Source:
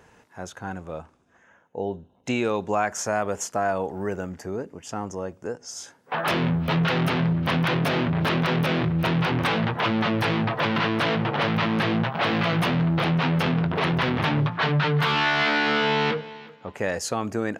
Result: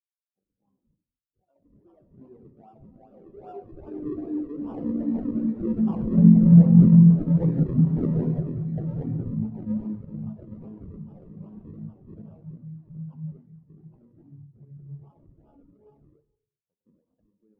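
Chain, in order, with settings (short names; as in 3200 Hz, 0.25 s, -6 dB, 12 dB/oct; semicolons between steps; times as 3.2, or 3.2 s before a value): Doppler pass-by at 7.51, 15 m/s, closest 22 m; HPF 93 Hz 24 dB/oct; echoes that change speed 0.21 s, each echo +5 st, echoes 3; in parallel at -1 dB: compressor, threshold -44 dBFS, peak gain reduction 23 dB; on the sum: decimation with a swept rate 41×, swing 100% 2.5 Hz; reverb RT60 1.3 s, pre-delay 43 ms, DRR 5.5 dB; spectral expander 2.5:1; gain +5 dB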